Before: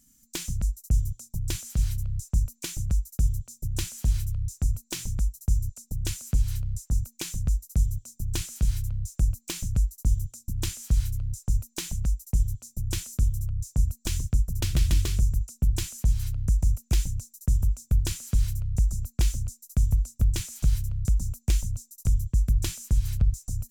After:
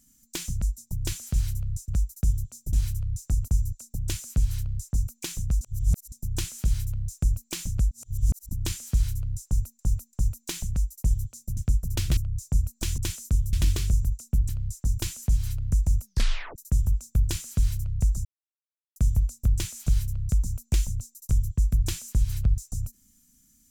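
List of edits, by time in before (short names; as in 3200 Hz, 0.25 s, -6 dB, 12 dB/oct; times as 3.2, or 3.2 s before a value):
0.78–1.21 cut
2.31–2.84 cut
3.69–4.05 cut
4.8–5.45 cut
6.55–7.08 copy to 15.78
7.58–8.09 reverse
9.88–10.46 reverse
11.42–11.76 loop, 3 plays
12.86–13.41 swap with 14.22–14.82
16.79 tape stop 0.53 s
19.01–19.72 mute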